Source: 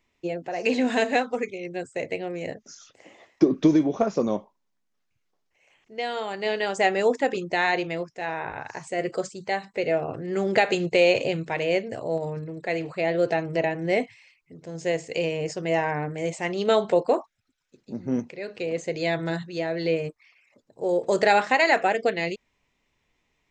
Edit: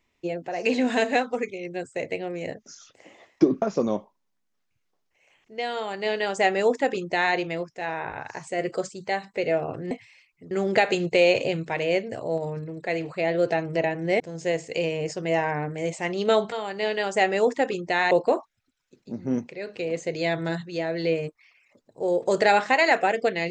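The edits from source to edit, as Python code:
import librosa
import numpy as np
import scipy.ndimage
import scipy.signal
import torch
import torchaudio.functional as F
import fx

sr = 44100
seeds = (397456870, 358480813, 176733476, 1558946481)

y = fx.edit(x, sr, fx.cut(start_s=3.62, length_s=0.4),
    fx.duplicate(start_s=6.15, length_s=1.59, to_s=16.92),
    fx.move(start_s=14.0, length_s=0.6, to_s=10.31), tone=tone)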